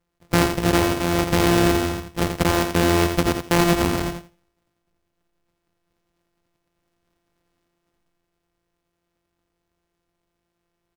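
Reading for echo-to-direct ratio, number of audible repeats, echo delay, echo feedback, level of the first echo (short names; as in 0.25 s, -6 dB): -7.0 dB, 2, 84 ms, 17%, -7.0 dB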